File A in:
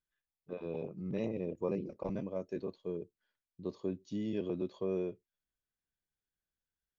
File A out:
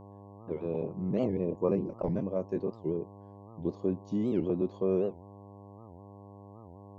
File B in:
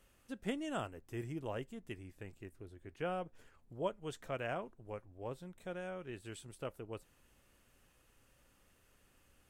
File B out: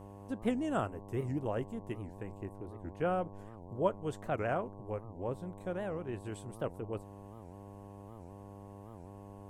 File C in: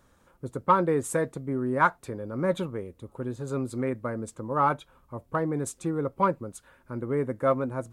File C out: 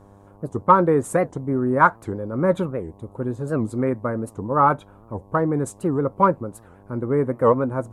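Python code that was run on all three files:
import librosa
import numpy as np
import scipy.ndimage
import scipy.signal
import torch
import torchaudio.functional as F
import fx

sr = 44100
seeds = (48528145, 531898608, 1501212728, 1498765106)

y = scipy.signal.sosfilt(scipy.signal.butter(2, 11000.0, 'lowpass', fs=sr, output='sos'), x)
y = fx.dynamic_eq(y, sr, hz=1300.0, q=0.97, threshold_db=-42.0, ratio=4.0, max_db=4)
y = fx.dmg_buzz(y, sr, base_hz=100.0, harmonics=11, level_db=-56.0, tilt_db=-3, odd_only=False)
y = fx.peak_eq(y, sr, hz=3900.0, db=-10.5, octaves=2.7)
y = fx.record_warp(y, sr, rpm=78.0, depth_cents=250.0)
y = y * 10.0 ** (7.0 / 20.0)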